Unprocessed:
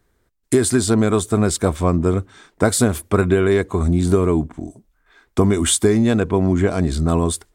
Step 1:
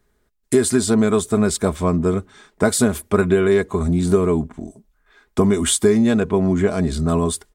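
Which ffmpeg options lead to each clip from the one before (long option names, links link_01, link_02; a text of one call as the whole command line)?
ffmpeg -i in.wav -af "aecho=1:1:4.8:0.43,volume=-1.5dB" out.wav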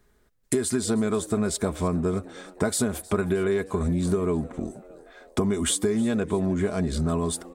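ffmpeg -i in.wav -filter_complex "[0:a]acompressor=threshold=-26dB:ratio=3,asplit=5[link_01][link_02][link_03][link_04][link_05];[link_02]adelay=312,afreqshift=93,volume=-20.5dB[link_06];[link_03]adelay=624,afreqshift=186,volume=-25.7dB[link_07];[link_04]adelay=936,afreqshift=279,volume=-30.9dB[link_08];[link_05]adelay=1248,afreqshift=372,volume=-36.1dB[link_09];[link_01][link_06][link_07][link_08][link_09]amix=inputs=5:normalize=0,volume=1.5dB" out.wav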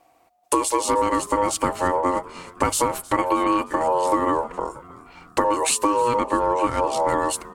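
ffmpeg -i in.wav -af "aeval=exprs='val(0)*sin(2*PI*720*n/s)':channel_layout=same,bandreject=frequency=50:width_type=h:width=6,bandreject=frequency=100:width_type=h:width=6,volume=6.5dB" out.wav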